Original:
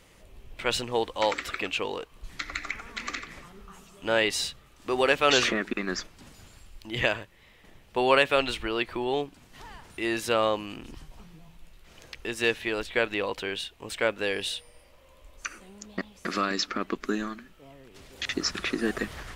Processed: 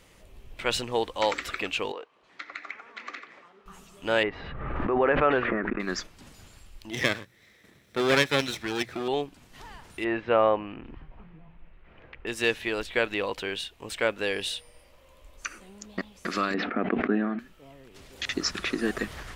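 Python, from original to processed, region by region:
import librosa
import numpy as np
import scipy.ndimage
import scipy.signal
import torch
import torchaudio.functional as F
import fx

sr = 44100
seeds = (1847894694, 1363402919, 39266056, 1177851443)

y = fx.chain(x, sr, fx.highpass(hz=440.0, slope=12),
    fx.spacing_loss(db_at_10k=25), at=(1.92, 3.66))
y = fx.chain(y, sr, fx.lowpass(hz=1800.0, slope=24),
    fx.pre_swell(db_per_s=32.0), at=(4.23, 5.8))
y = fx.chain(y, sr, fx.lower_of_two(delay_ms=0.52),
    fx.highpass(hz=100.0, slope=12),
    fx.hum_notches(base_hz=60, count=3), at=(6.91, 9.08))
y = fx.chain(y, sr, fx.lowpass(hz=2400.0, slope=24),
    fx.dynamic_eq(hz=700.0, q=1.2, threshold_db=-36.0, ratio=4.0, max_db=5), at=(10.04, 12.27))
y = fx.chain(y, sr, fx.cabinet(low_hz=140.0, low_slope=12, high_hz=2300.0, hz=(230.0, 470.0, 720.0, 1100.0), db=(7, 4, 9, -6)),
    fx.sustainer(db_per_s=34.0), at=(16.54, 17.39))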